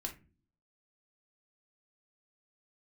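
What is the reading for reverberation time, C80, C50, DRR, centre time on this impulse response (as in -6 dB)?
no single decay rate, 19.5 dB, 12.0 dB, 1.5 dB, 12 ms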